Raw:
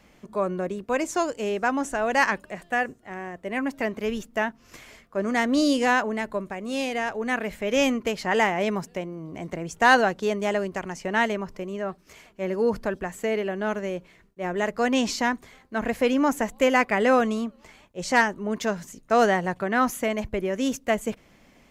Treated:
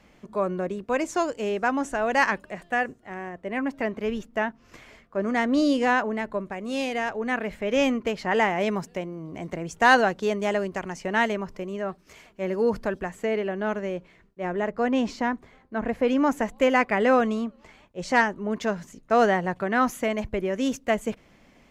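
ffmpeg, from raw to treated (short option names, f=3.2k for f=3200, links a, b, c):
-af "asetnsamples=n=441:p=0,asendcmd='3.29 lowpass f 2800;6.52 lowpass f 6700;7.1 lowpass f 3300;8.5 lowpass f 8700;13.09 lowpass f 3400;14.56 lowpass f 1300;16.08 lowpass f 3500;19.55 lowpass f 5900',lowpass=f=5.6k:p=1"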